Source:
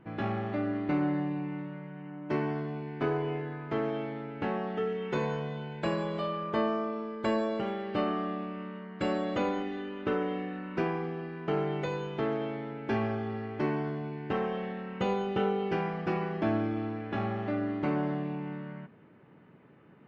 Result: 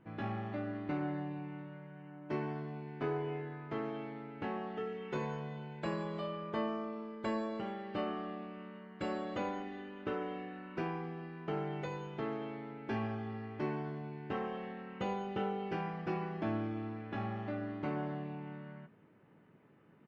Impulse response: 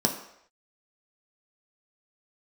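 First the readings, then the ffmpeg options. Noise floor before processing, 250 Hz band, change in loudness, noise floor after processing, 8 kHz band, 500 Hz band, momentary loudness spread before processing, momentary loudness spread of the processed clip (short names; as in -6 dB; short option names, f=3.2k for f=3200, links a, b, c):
-56 dBFS, -7.5 dB, -7.0 dB, -63 dBFS, n/a, -8.0 dB, 8 LU, 8 LU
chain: -filter_complex "[0:a]asplit=2[a][b];[b]adelay=19,volume=-10.5dB[c];[a][c]amix=inputs=2:normalize=0,volume=-7dB"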